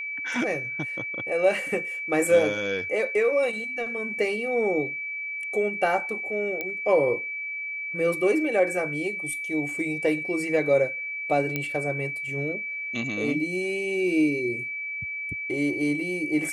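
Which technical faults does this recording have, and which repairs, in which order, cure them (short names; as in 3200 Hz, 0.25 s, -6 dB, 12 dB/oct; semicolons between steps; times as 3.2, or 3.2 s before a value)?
tone 2300 Hz -30 dBFS
6.61 pop -16 dBFS
11.56 pop -13 dBFS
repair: de-click; notch 2300 Hz, Q 30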